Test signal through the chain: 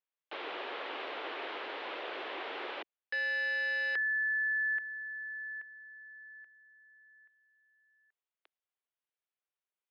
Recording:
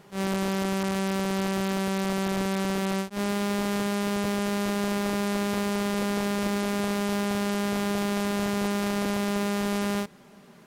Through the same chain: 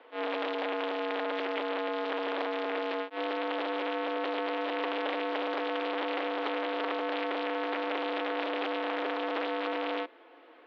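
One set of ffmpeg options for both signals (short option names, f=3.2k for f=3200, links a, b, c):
-af "acontrast=37,aeval=exprs='(mod(6.68*val(0)+1,2)-1)/6.68':c=same,highpass=f=270:t=q:w=0.5412,highpass=f=270:t=q:w=1.307,lowpass=f=3.4k:t=q:w=0.5176,lowpass=f=3.4k:t=q:w=0.7071,lowpass=f=3.4k:t=q:w=1.932,afreqshift=88,volume=-6dB"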